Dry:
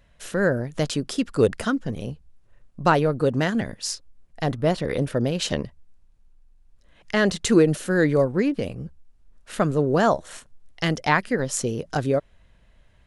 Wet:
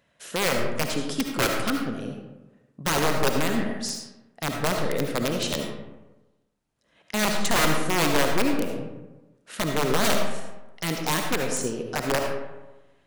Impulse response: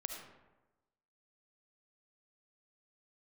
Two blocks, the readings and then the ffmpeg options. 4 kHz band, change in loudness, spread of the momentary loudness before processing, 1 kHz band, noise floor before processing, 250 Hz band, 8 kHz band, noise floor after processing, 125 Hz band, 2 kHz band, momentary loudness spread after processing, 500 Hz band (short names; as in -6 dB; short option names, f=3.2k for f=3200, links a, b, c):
+4.0 dB, -2.5 dB, 12 LU, -1.0 dB, -58 dBFS, -4.0 dB, +3.0 dB, -68 dBFS, -6.0 dB, 0.0 dB, 13 LU, -4.5 dB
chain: -filter_complex "[0:a]highpass=160,aeval=exprs='(mod(5.01*val(0)+1,2)-1)/5.01':c=same[a];[1:a]atrim=start_sample=2205[b];[a][b]afir=irnorm=-1:irlink=0"